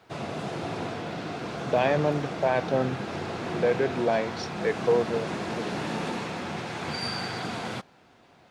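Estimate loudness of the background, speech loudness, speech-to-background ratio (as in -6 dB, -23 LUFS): -33.0 LUFS, -27.0 LUFS, 6.0 dB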